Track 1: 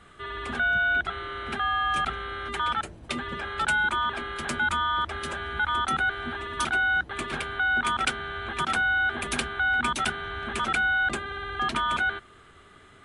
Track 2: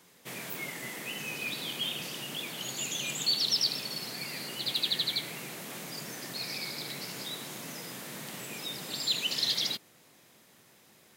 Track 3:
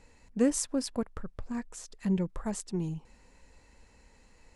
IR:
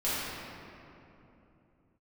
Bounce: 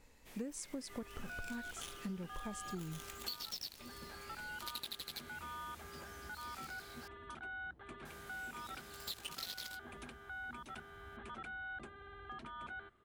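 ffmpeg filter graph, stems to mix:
-filter_complex "[0:a]highshelf=frequency=2000:gain=-10.5,alimiter=limit=-23dB:level=0:latency=1:release=267,adelay=700,volume=-16dB[link_01];[1:a]flanger=delay=17.5:depth=2.9:speed=2.5,aeval=exprs='0.112*(cos(1*acos(clip(val(0)/0.112,-1,1)))-cos(1*PI/2))+0.0224*(cos(7*acos(clip(val(0)/0.112,-1,1)))-cos(7*PI/2))':channel_layout=same,volume=-3dB,asplit=3[link_02][link_03][link_04];[link_02]atrim=end=7.08,asetpts=PTS-STARTPTS,afade=type=out:start_time=7.076:duration=0.004:curve=hsin[link_05];[link_03]atrim=start=7.08:end=8.05,asetpts=PTS-STARTPTS,volume=0[link_06];[link_04]atrim=start=8.05,asetpts=PTS-STARTPTS,afade=type=in:duration=0.004:curve=hsin[link_07];[link_05][link_06][link_07]concat=n=3:v=0:a=1[link_08];[2:a]acontrast=77,volume=-13dB[link_09];[link_01][link_08][link_09]amix=inputs=3:normalize=0,acompressor=threshold=-39dB:ratio=16"

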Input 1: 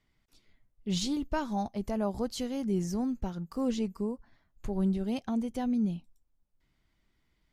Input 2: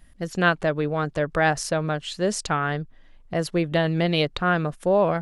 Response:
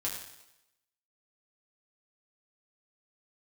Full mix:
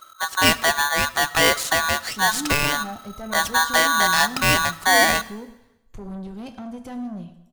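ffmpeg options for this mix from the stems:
-filter_complex "[0:a]asoftclip=type=tanh:threshold=-31.5dB,adelay=1300,volume=-2dB,asplit=2[link_01][link_02];[link_02]volume=-4.5dB[link_03];[1:a]acontrast=53,aeval=exprs='val(0)*sgn(sin(2*PI*1300*n/s))':channel_layout=same,volume=-3.5dB,asplit=2[link_04][link_05];[link_05]volume=-15.5dB[link_06];[2:a]atrim=start_sample=2205[link_07];[link_03][link_06]amix=inputs=2:normalize=0[link_08];[link_08][link_07]afir=irnorm=-1:irlink=0[link_09];[link_01][link_04][link_09]amix=inputs=3:normalize=0"

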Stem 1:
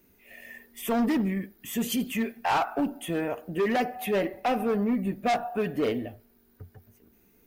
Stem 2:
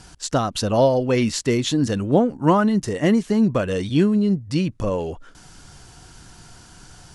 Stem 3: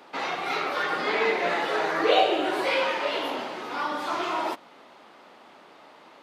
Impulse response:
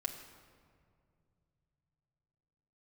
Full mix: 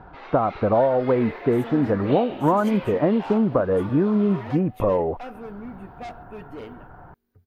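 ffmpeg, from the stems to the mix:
-filter_complex "[0:a]highshelf=frequency=9100:gain=-8.5,adelay=750,volume=-11.5dB[link_01];[1:a]lowpass=frequency=1500:width=0.5412,lowpass=frequency=1500:width=1.3066,equalizer=frequency=760:width_type=o:width=2.2:gain=9.5,acompressor=threshold=-15dB:ratio=6,volume=-1dB[link_02];[2:a]lowpass=4800,aemphasis=mode=reproduction:type=50fm,volume=-11.5dB[link_03];[link_01][link_02][link_03]amix=inputs=3:normalize=0"

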